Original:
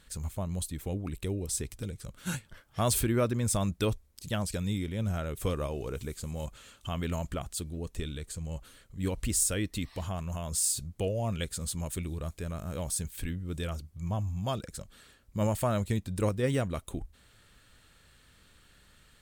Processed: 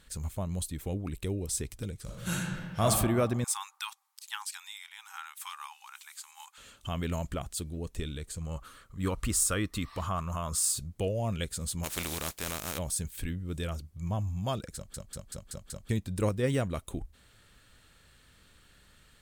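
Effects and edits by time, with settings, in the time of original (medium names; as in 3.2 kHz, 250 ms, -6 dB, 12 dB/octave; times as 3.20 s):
2.02–2.83 s: reverb throw, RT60 1.6 s, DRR -3.5 dB
3.44–6.58 s: brick-wall FIR high-pass 780 Hz
8.41–10.77 s: peaking EQ 1.2 kHz +14.5 dB 0.52 oct
11.83–12.77 s: spectral contrast reduction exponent 0.36
14.75 s: stutter in place 0.19 s, 6 plays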